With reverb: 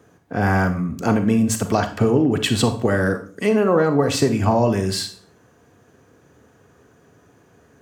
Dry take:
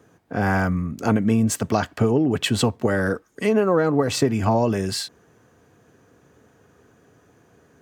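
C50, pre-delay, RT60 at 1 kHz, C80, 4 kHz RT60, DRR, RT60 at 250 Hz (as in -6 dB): 11.0 dB, 31 ms, 0.40 s, 15.5 dB, 0.40 s, 8.0 dB, 0.50 s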